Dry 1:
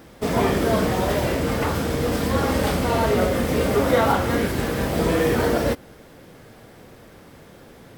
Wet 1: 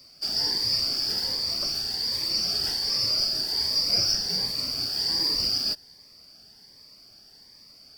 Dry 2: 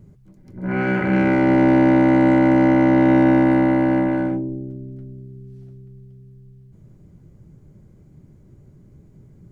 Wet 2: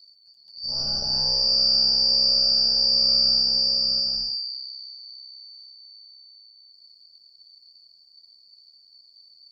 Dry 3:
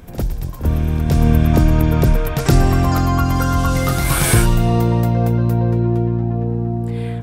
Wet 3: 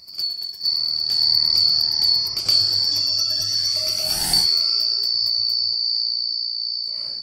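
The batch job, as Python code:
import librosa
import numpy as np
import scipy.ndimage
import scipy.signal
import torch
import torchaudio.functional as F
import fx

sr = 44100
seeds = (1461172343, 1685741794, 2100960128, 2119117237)

y = fx.band_shuffle(x, sr, order='2341')
y = fx.notch_cascade(y, sr, direction='rising', hz=1.3)
y = F.gain(torch.from_numpy(y), -5.5).numpy()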